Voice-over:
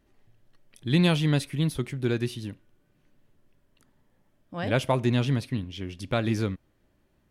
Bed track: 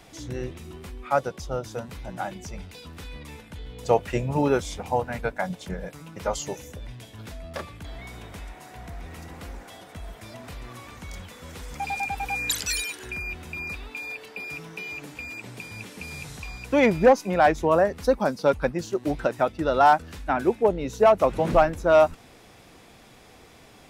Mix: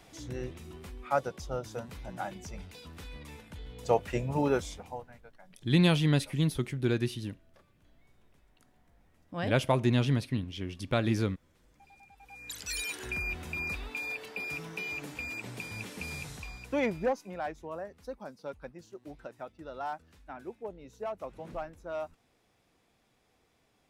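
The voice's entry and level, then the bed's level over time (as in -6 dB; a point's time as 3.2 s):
4.80 s, -2.0 dB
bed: 4.64 s -5.5 dB
5.33 s -29 dB
12.1 s -29 dB
12.95 s -1.5 dB
16.1 s -1.5 dB
17.63 s -20 dB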